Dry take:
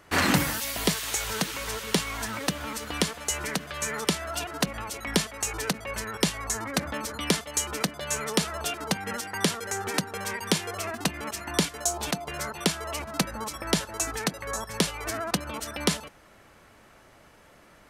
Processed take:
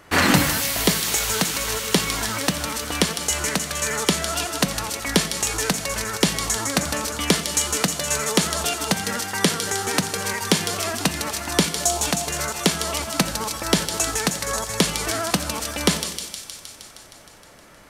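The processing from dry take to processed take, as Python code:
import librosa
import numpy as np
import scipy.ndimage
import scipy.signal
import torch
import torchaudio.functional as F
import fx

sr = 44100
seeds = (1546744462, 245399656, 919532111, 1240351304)

y = fx.echo_wet_highpass(x, sr, ms=156, feedback_pct=73, hz=4000.0, wet_db=-4.0)
y = fx.rev_gated(y, sr, seeds[0], gate_ms=480, shape='falling', drr_db=10.5)
y = y * 10.0 ** (5.5 / 20.0)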